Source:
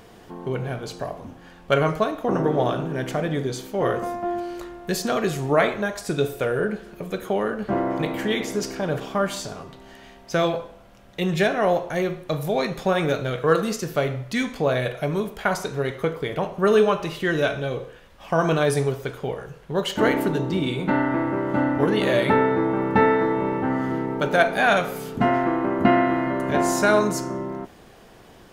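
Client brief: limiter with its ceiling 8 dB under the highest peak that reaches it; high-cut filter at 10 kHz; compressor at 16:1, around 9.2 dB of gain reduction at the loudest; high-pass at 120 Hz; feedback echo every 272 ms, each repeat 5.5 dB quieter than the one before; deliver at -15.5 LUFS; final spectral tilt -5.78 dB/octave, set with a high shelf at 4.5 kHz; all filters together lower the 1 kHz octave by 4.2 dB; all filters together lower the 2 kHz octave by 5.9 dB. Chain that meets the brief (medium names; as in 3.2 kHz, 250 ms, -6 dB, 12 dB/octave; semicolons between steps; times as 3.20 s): high-pass 120 Hz; low-pass 10 kHz; peaking EQ 1 kHz -4.5 dB; peaking EQ 2 kHz -5 dB; treble shelf 4.5 kHz -6.5 dB; compression 16:1, threshold -24 dBFS; peak limiter -21.5 dBFS; feedback delay 272 ms, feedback 53%, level -5.5 dB; trim +15 dB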